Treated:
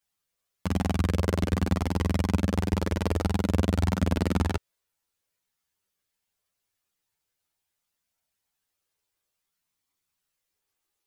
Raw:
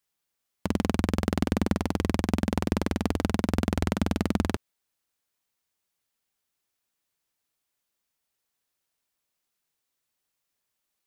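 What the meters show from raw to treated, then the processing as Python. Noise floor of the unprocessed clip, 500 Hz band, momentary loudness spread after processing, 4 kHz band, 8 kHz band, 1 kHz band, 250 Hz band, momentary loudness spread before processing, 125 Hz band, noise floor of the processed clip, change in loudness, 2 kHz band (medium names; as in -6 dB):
-82 dBFS, 0.0 dB, 3 LU, 0.0 dB, -0.5 dB, -0.5 dB, -1.5 dB, 2 LU, +4.0 dB, -83 dBFS, +0.5 dB, -0.5 dB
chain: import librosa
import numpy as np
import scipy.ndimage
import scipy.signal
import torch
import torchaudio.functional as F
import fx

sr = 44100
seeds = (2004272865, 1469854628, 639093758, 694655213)

y = fx.chorus_voices(x, sr, voices=4, hz=0.29, base_ms=11, depth_ms=1.3, mix_pct=55)
y = F.gain(torch.from_numpy(y), 2.5).numpy()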